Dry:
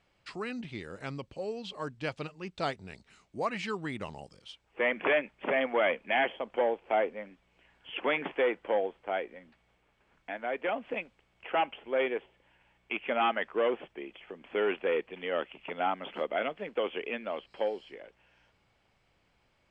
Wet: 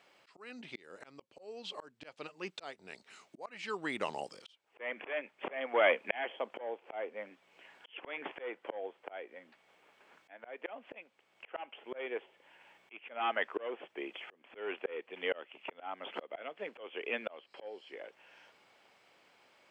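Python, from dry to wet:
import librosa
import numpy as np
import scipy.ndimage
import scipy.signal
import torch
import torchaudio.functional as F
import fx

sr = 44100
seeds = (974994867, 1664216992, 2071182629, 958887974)

y = scipy.signal.sosfilt(scipy.signal.butter(2, 350.0, 'highpass', fs=sr, output='sos'), x)
y = fx.auto_swell(y, sr, attack_ms=765.0)
y = y * librosa.db_to_amplitude(7.5)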